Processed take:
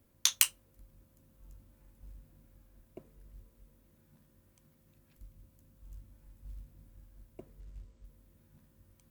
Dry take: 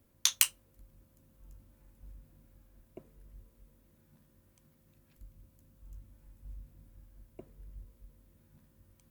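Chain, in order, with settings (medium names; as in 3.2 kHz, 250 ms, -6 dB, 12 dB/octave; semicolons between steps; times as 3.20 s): 7.60–8.05 s: brick-wall FIR low-pass 8.5 kHz; short-mantissa float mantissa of 4-bit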